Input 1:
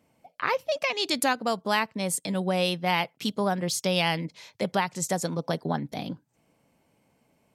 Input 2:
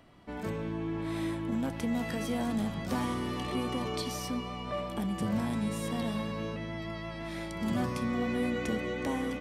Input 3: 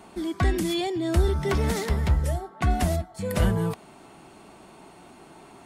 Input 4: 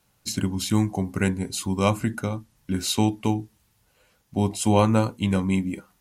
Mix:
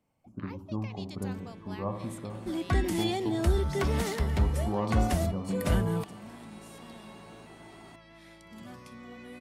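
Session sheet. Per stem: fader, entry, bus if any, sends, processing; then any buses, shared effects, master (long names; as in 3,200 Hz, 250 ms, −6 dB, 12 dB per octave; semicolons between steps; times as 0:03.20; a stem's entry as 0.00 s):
−12.0 dB, 0.00 s, no send, no echo send, downward compressor 1.5 to 1, threshold −50 dBFS, peak gain reduction 11 dB
−13.5 dB, 0.90 s, no send, no echo send, tilt shelving filter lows −3 dB
−4.0 dB, 2.30 s, no send, no echo send, no processing
−12.0 dB, 0.00 s, no send, echo send −8.5 dB, elliptic low-pass filter 1,200 Hz, stop band 40 dB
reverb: not used
echo: repeating echo 73 ms, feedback 60%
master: no processing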